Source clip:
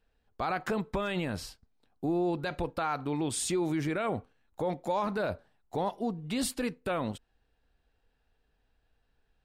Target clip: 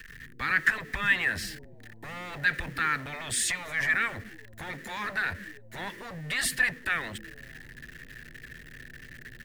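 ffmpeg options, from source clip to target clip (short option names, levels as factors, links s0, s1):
-filter_complex "[0:a]aeval=exprs='val(0)+0.5*0.00398*sgn(val(0))':c=same,highshelf=f=8400:g=4,acrossover=split=100|490|5200[s0][s1][s2][s3];[s0]asplit=9[s4][s5][s6][s7][s8][s9][s10][s11][s12];[s5]adelay=80,afreqshift=110,volume=0.631[s13];[s6]adelay=160,afreqshift=220,volume=0.372[s14];[s7]adelay=240,afreqshift=330,volume=0.219[s15];[s8]adelay=320,afreqshift=440,volume=0.13[s16];[s9]adelay=400,afreqshift=550,volume=0.0767[s17];[s10]adelay=480,afreqshift=660,volume=0.0452[s18];[s11]adelay=560,afreqshift=770,volume=0.0266[s19];[s12]adelay=640,afreqshift=880,volume=0.0157[s20];[s4][s13][s14][s15][s16][s17][s18][s19][s20]amix=inputs=9:normalize=0[s21];[s1]aeval=exprs='0.0106*(abs(mod(val(0)/0.0106+3,4)-2)-1)':c=same[s22];[s2]highpass=f=1800:t=q:w=11[s23];[s21][s22][s23][s3]amix=inputs=4:normalize=0,volume=1.33"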